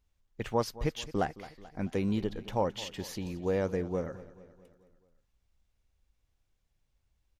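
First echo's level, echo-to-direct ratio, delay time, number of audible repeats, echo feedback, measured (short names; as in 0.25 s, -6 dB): -17.5 dB, -16.0 dB, 0.217 s, 4, 55%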